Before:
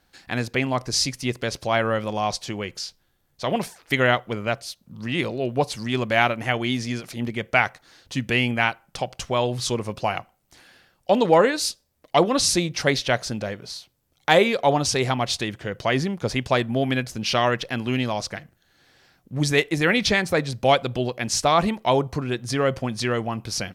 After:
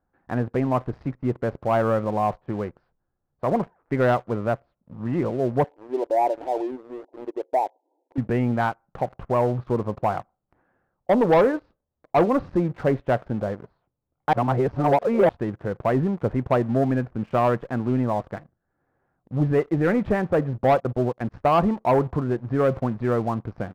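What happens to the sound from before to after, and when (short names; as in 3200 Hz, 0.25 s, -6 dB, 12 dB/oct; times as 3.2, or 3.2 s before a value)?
5.64–8.18 brick-wall FIR band-pass 270–1000 Hz
14.33–15.29 reverse
20.76–21.6 gate -31 dBFS, range -14 dB
whole clip: LPF 1300 Hz 24 dB/oct; sample leveller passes 2; gain -5 dB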